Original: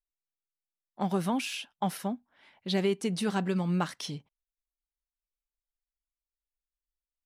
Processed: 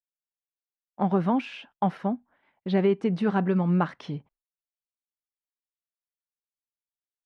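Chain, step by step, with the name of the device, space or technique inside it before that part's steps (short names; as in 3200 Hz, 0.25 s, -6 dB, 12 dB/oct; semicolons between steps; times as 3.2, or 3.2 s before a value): hearing-loss simulation (LPF 1700 Hz 12 dB/oct; expander -55 dBFS); gain +5.5 dB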